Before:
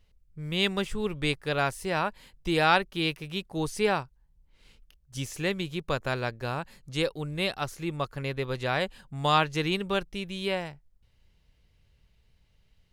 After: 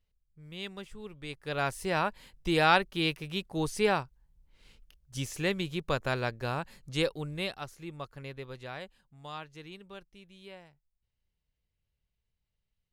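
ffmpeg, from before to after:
ffmpeg -i in.wav -af "volume=-1dB,afade=type=in:start_time=1.28:duration=0.53:silence=0.223872,afade=type=out:start_time=7.04:duration=0.65:silence=0.354813,afade=type=out:start_time=8.26:duration=0.91:silence=0.354813" out.wav

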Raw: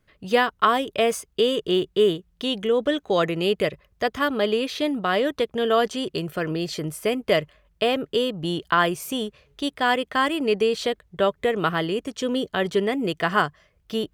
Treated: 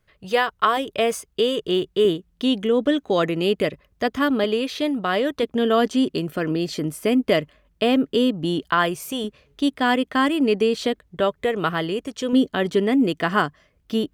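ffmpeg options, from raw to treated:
ffmpeg -i in.wav -af "asetnsamples=nb_out_samples=441:pad=0,asendcmd='0.77 equalizer g 0.5;2.05 equalizer g 8.5;4.44 equalizer g 2.5;5.43 equalizer g 11;8.65 equalizer g -0.5;9.24 equalizer g 9;11.2 equalizer g 0.5;12.33 equalizer g 10.5',equalizer=frequency=260:width_type=o:width=0.55:gain=-8.5" out.wav

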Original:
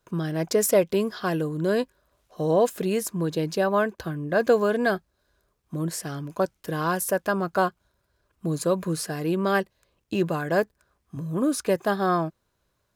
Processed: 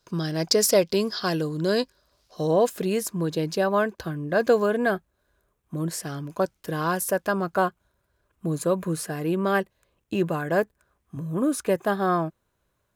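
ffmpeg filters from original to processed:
ffmpeg -i in.wav -af "asetnsamples=nb_out_samples=441:pad=0,asendcmd='2.47 equalizer g 2;4.66 equalizer g -8.5;5.77 equalizer g 0.5;7.54 equalizer g -6',equalizer=frequency=4800:width_type=o:width=0.68:gain=14" out.wav

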